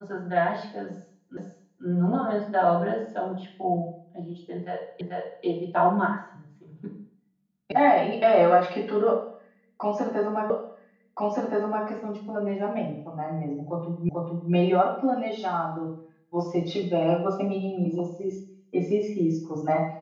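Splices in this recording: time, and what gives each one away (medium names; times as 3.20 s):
1.37 s: repeat of the last 0.49 s
5.01 s: repeat of the last 0.44 s
7.72 s: sound stops dead
10.50 s: repeat of the last 1.37 s
14.09 s: repeat of the last 0.44 s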